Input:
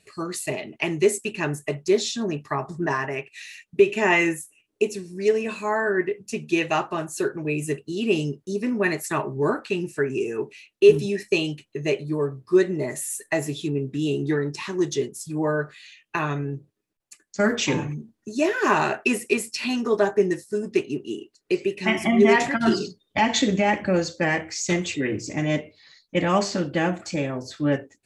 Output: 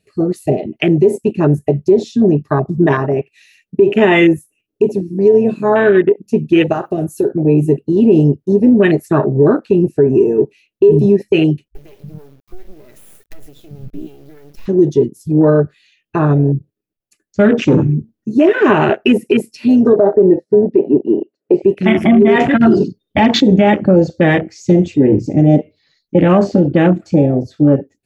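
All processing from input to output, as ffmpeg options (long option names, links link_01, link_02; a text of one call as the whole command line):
ffmpeg -i in.wav -filter_complex "[0:a]asettb=1/sr,asplit=3[link_01][link_02][link_03];[link_01]atrim=end=6.724[link_04];[link_02]atrim=start=6.72:end=7.32,asetpts=PTS-STARTPTS,afade=type=in:duration=0.004:curve=qsin,afade=type=out:start_time=0.596:duration=0.004:curve=qsin,aemphasis=mode=production:type=50fm,acompressor=threshold=-25dB:ratio=4:attack=3.2:release=140:knee=1:detection=peak[link_05];[link_03]atrim=start=7.316[link_06];[link_04][link_05]acrossfade=duration=0.004:curve1=hsin:curve2=qsin[link_07];[link_07][link_06]acrossfade=duration=0.004:curve1=qsin:curve2=hsin,asettb=1/sr,asplit=3[link_08][link_09][link_10];[link_08]atrim=end=11.684[link_11];[link_09]atrim=start=11.68:end=14.66,asetpts=PTS-STARTPTS,afade=type=in:duration=0.004:curve=qsin,afade=type=out:start_time=2.976:duration=0.004:curve=qsin,equalizer=frequency=160:width_type=o:width=2.5:gain=-6,acompressor=threshold=-31dB:ratio=20:attack=3.2:release=140:knee=1:detection=peak,acrusher=bits=5:dc=4:mix=0:aa=0.000001[link_12];[link_10]atrim=start=14.656[link_13];[link_11][link_12]acrossfade=duration=0.004:curve1=hsin:curve2=qsin[link_14];[link_14][link_13]acrossfade=duration=0.004:curve1=qsin:curve2=hsin,asettb=1/sr,asplit=3[link_15][link_16][link_17];[link_15]atrim=end=19.934[link_18];[link_16]atrim=start=19.93:end=21.54,asetpts=PTS-STARTPTS,afade=type=in:duration=0.004:curve=qsin,afade=type=out:start_time=1.606:duration=0.004:curve=qsin,highpass=180,lowpass=2200,equalizer=frequency=570:width=1.8:gain=9[link_19];[link_17]atrim=start=21.536[link_20];[link_18][link_19]acrossfade=duration=0.004:curve1=hsin:curve2=qsin[link_21];[link_21][link_20]acrossfade=duration=0.004:curve1=qsin:curve2=hsin,afwtdn=0.0501,equalizer=frequency=1000:width_type=o:width=1:gain=-9,equalizer=frequency=2000:width_type=o:width=1:gain=-6,equalizer=frequency=4000:width_type=o:width=1:gain=-4,equalizer=frequency=8000:width_type=o:width=1:gain=-11,alimiter=level_in=18dB:limit=-1dB:release=50:level=0:latency=1,volume=-1dB" out.wav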